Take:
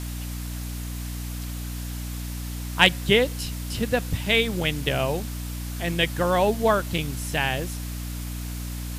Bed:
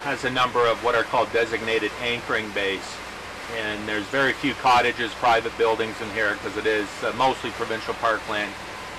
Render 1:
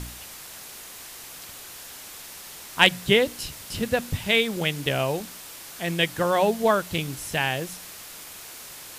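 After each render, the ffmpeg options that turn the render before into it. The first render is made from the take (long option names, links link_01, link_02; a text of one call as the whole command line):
ffmpeg -i in.wav -af "bandreject=frequency=60:width_type=h:width=4,bandreject=frequency=120:width_type=h:width=4,bandreject=frequency=180:width_type=h:width=4,bandreject=frequency=240:width_type=h:width=4,bandreject=frequency=300:width_type=h:width=4" out.wav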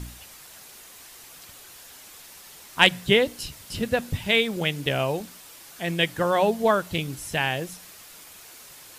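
ffmpeg -i in.wav -af "afftdn=noise_reduction=6:noise_floor=-42" out.wav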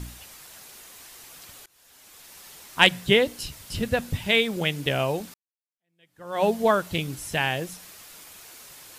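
ffmpeg -i in.wav -filter_complex "[0:a]asettb=1/sr,asplit=3[link_01][link_02][link_03];[link_01]atrim=end=3.384[link_04];[link_02]atrim=start=3.38:end=4.12,asetpts=PTS-STARTPTS,afade=type=in:duration=0.004:curve=qsin,afade=type=out:start_time=0.736:duration=0.004:curve=qsin,asubboost=boost=7:cutoff=170[link_05];[link_03]atrim=start=4.116[link_06];[link_04][link_05]acrossfade=duration=0.004:curve1=hsin:curve2=qsin[link_07];[link_07][link_06]acrossfade=duration=0.004:curve1=qsin:curve2=hsin,asplit=3[link_08][link_09][link_10];[link_08]atrim=end=1.66,asetpts=PTS-STARTPTS,afade=type=out:start_time=1.656:duration=0.004:curve=hsin:silence=0.0749894[link_11];[link_09]atrim=start=1.66:end=5.34,asetpts=PTS-STARTPTS,afade=type=in:duration=0.77:silence=0.0749894,afade=type=out:start_time=3.676:duration=0.004:curve=hsin[link_12];[link_10]atrim=start=5.34,asetpts=PTS-STARTPTS,afade=type=in:duration=1.1:curve=exp[link_13];[link_11][link_12][link_13]concat=n=3:v=0:a=1" out.wav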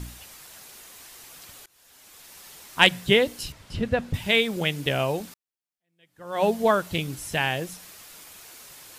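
ffmpeg -i in.wav -filter_complex "[0:a]asettb=1/sr,asplit=3[link_01][link_02][link_03];[link_01]atrim=end=3.524[link_04];[link_02]atrim=start=3.52:end=4.14,asetpts=PTS-STARTPTS,afade=type=in:duration=0.004:curve=qsin,afade=type=out:start_time=0.616:duration=0.004:curve=qsin,aemphasis=mode=reproduction:type=75fm[link_05];[link_03]atrim=start=4.136[link_06];[link_04][link_05]acrossfade=duration=0.004:curve1=hsin:curve2=qsin[link_07];[link_07][link_06]acrossfade=duration=0.004:curve1=qsin:curve2=hsin" out.wav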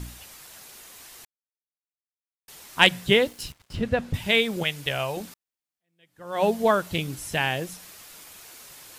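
ffmpeg -i in.wav -filter_complex "[0:a]asettb=1/sr,asplit=3[link_01][link_02][link_03];[link_01]atrim=end=3.084[link_04];[link_02]atrim=start=3.08:end=3.79,asetpts=PTS-STARTPTS,afade=type=in:duration=0.004:curve=qsin,afade=type=out:start_time=0.706:duration=0.004:curve=qsin,aeval=exprs='sgn(val(0))*max(abs(val(0))-0.00422,0)':channel_layout=same[link_05];[link_03]atrim=start=3.786[link_06];[link_04][link_05]acrossfade=duration=0.004:curve1=hsin:curve2=qsin[link_07];[link_07][link_06]acrossfade=duration=0.004:curve1=qsin:curve2=hsin,asettb=1/sr,asplit=3[link_08][link_09][link_10];[link_08]atrim=end=4.634[link_11];[link_09]atrim=start=4.63:end=5.17,asetpts=PTS-STARTPTS,afade=type=in:duration=0.004:curve=qsin,afade=type=out:start_time=0.536:duration=0.004:curve=qsin,equalizer=frequency=260:width=0.82:gain=-11.5[link_12];[link_10]atrim=start=5.166[link_13];[link_11][link_12]acrossfade=duration=0.004:curve1=hsin:curve2=qsin[link_14];[link_14][link_13]acrossfade=duration=0.004:curve1=qsin:curve2=hsin,asplit=3[link_15][link_16][link_17];[link_15]atrim=end=1.25,asetpts=PTS-STARTPTS,afade=type=out:start_time=1.246:duration=0.004:curve=hsin[link_18];[link_16]atrim=start=1.25:end=2.48,asetpts=PTS-STARTPTS,volume=0[link_19];[link_17]atrim=start=2.48,asetpts=PTS-STARTPTS,afade=type=in:duration=0.004:curve=hsin[link_20];[link_18][link_19][link_20]concat=n=3:v=0:a=1" out.wav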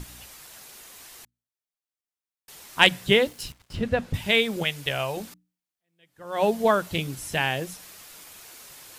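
ffmpeg -i in.wav -af "bandreject=frequency=60:width_type=h:width=6,bandreject=frequency=120:width_type=h:width=6,bandreject=frequency=180:width_type=h:width=6,bandreject=frequency=240:width_type=h:width=6,bandreject=frequency=300:width_type=h:width=6" out.wav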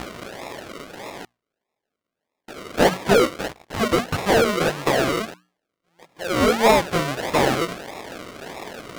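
ffmpeg -i in.wav -filter_complex "[0:a]acrusher=samples=41:mix=1:aa=0.000001:lfo=1:lforange=24.6:lforate=1.6,asplit=2[link_01][link_02];[link_02]highpass=frequency=720:poles=1,volume=22dB,asoftclip=type=tanh:threshold=-5.5dB[link_03];[link_01][link_03]amix=inputs=2:normalize=0,lowpass=frequency=5600:poles=1,volume=-6dB" out.wav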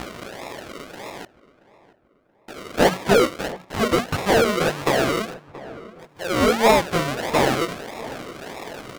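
ffmpeg -i in.wav -filter_complex "[0:a]asplit=2[link_01][link_02];[link_02]adelay=678,lowpass=frequency=1700:poles=1,volume=-17dB,asplit=2[link_03][link_04];[link_04]adelay=678,lowpass=frequency=1700:poles=1,volume=0.46,asplit=2[link_05][link_06];[link_06]adelay=678,lowpass=frequency=1700:poles=1,volume=0.46,asplit=2[link_07][link_08];[link_08]adelay=678,lowpass=frequency=1700:poles=1,volume=0.46[link_09];[link_01][link_03][link_05][link_07][link_09]amix=inputs=5:normalize=0" out.wav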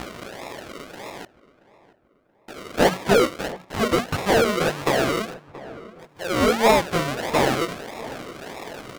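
ffmpeg -i in.wav -af "volume=-1dB" out.wav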